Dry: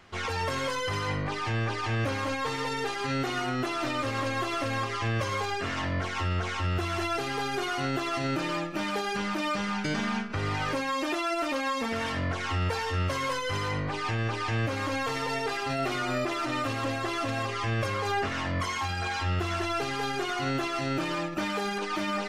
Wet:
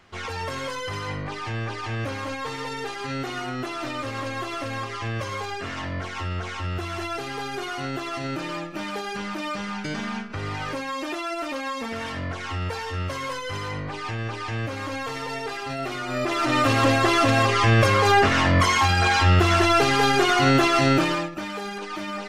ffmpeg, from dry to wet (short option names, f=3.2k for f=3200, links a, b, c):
-af "volume=11.5dB,afade=t=in:st=16.08:d=0.7:silence=0.251189,afade=t=out:st=20.88:d=0.45:silence=0.223872"